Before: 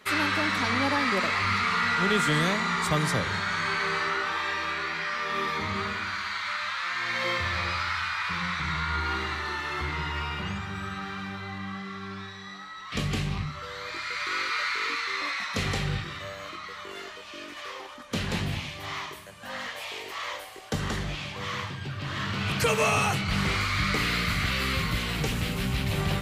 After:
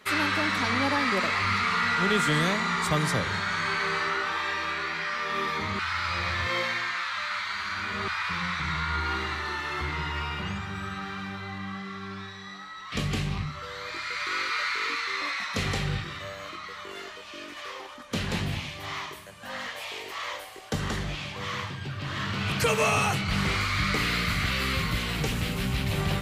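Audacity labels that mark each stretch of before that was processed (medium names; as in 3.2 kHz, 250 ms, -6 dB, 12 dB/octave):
5.790000	8.080000	reverse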